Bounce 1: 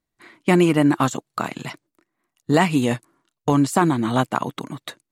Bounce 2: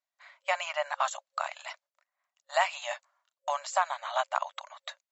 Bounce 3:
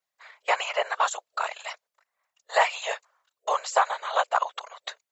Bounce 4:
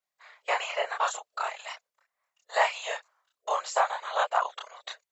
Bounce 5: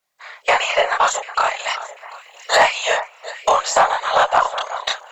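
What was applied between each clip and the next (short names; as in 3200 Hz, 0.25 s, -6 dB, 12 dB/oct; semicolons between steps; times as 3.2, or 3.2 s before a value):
FFT band-pass 540–7700 Hz; gain -6 dB
whisperiser; gain +5 dB
chorus voices 4, 0.86 Hz, delay 29 ms, depth 4.3 ms
recorder AGC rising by 12 dB/s; echo with dull and thin repeats by turns 0.371 s, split 1900 Hz, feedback 55%, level -13 dB; added harmonics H 5 -20 dB, 8 -36 dB, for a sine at -10 dBFS; gain +8.5 dB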